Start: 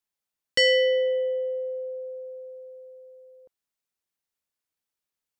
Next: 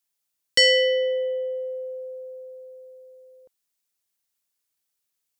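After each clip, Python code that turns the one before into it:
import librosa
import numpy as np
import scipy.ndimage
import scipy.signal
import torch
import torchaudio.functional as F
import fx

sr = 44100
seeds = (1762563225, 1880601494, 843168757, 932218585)

y = fx.high_shelf(x, sr, hz=3300.0, db=10.0)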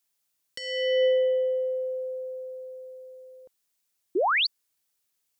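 y = fx.over_compress(x, sr, threshold_db=-23.0, ratio=-0.5)
y = fx.spec_paint(y, sr, seeds[0], shape='rise', start_s=4.15, length_s=0.32, low_hz=320.0, high_hz=4900.0, level_db=-23.0)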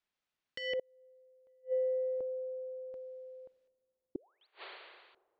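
y = fx.rev_schroeder(x, sr, rt60_s=1.7, comb_ms=30, drr_db=14.5)
y = fx.gate_flip(y, sr, shuts_db=-23.0, range_db=-38)
y = fx.filter_lfo_lowpass(y, sr, shape='square', hz=0.68, low_hz=620.0, high_hz=2800.0, q=0.79)
y = y * 10.0 ** (-2.0 / 20.0)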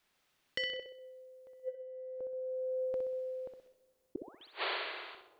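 y = fx.over_compress(x, sr, threshold_db=-44.0, ratio=-1.0)
y = fx.room_flutter(y, sr, wall_m=10.8, rt60_s=0.55)
y = y * 10.0 ** (7.0 / 20.0)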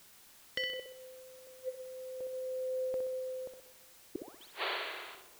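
y = fx.dmg_noise_colour(x, sr, seeds[1], colour='white', level_db=-59.0)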